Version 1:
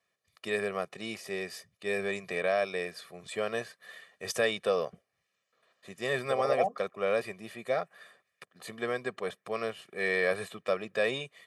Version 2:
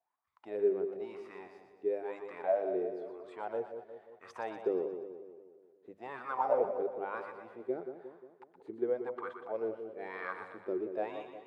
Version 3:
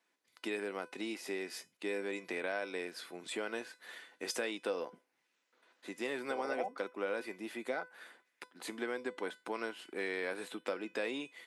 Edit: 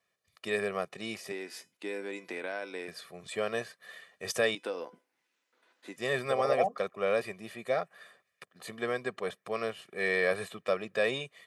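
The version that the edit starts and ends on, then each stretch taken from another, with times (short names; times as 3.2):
1
1.32–2.88 from 3
4.55–5.96 from 3
not used: 2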